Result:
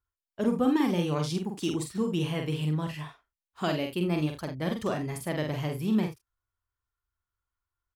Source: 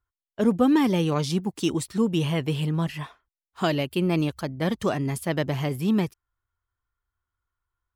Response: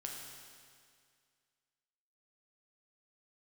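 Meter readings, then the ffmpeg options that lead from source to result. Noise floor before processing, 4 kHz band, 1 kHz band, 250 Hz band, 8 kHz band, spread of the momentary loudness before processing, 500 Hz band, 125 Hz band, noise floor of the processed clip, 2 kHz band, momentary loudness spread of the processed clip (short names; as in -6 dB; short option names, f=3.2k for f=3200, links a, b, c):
under -85 dBFS, -4.5 dB, -4.5 dB, -4.5 dB, -4.5 dB, 8 LU, -4.5 dB, -4.5 dB, under -85 dBFS, -4.5 dB, 7 LU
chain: -af "aecho=1:1:46|78:0.596|0.2,volume=-6dB"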